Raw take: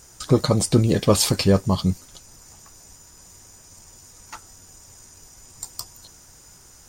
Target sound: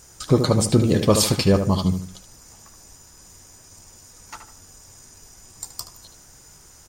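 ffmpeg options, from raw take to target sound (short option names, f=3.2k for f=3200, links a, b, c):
-filter_complex "[0:a]asplit=2[a][b];[b]adelay=75,lowpass=f=2.8k:p=1,volume=-7dB,asplit=2[c][d];[d]adelay=75,lowpass=f=2.8k:p=1,volume=0.37,asplit=2[e][f];[f]adelay=75,lowpass=f=2.8k:p=1,volume=0.37,asplit=2[g][h];[h]adelay=75,lowpass=f=2.8k:p=1,volume=0.37[i];[a][c][e][g][i]amix=inputs=5:normalize=0"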